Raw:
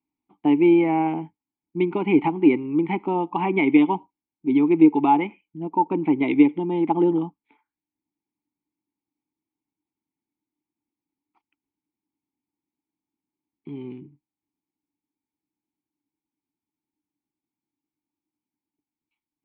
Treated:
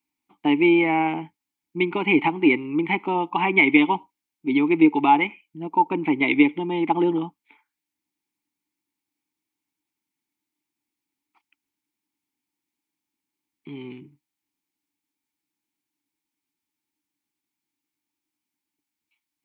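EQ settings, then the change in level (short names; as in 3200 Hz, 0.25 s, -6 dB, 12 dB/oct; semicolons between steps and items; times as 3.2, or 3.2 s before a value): bell 2000 Hz +8 dB 2.1 oct; high shelf 2900 Hz +11.5 dB; -2.5 dB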